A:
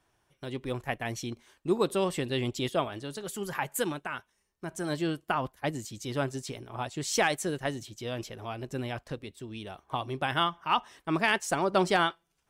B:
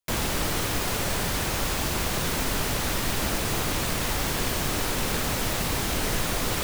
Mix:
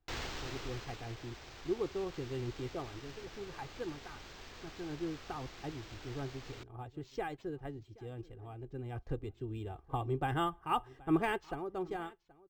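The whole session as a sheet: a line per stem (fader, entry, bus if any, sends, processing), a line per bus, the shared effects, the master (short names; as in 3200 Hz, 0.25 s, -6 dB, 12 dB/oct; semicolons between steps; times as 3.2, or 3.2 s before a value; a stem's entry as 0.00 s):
8.84 s -16 dB -> 9.05 s -7.5 dB -> 11.28 s -7.5 dB -> 11.65 s -18.5 dB, 0.00 s, no send, echo send -22.5 dB, tilt -3.5 dB/oct
-14.5 dB, 0.00 s, no send, no echo send, high shelf 4200 Hz +7.5 dB; vibrato 10 Hz 33 cents; auto duck -13 dB, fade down 1.15 s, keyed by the first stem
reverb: off
echo: echo 0.776 s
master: comb 2.5 ms, depth 61%; decimation joined by straight lines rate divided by 4×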